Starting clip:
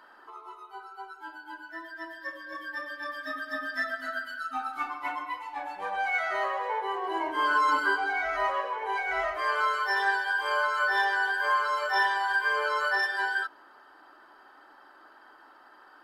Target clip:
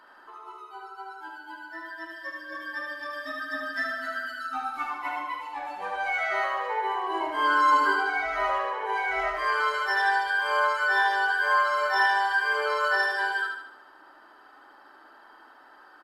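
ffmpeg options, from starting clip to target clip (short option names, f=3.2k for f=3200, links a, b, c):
-filter_complex "[0:a]asplit=2[a][b];[b]aecho=0:1:75|150|225|300|375|450:0.631|0.303|0.145|0.0698|0.0335|0.0161[c];[a][c]amix=inputs=2:normalize=0,aresample=32000,aresample=44100"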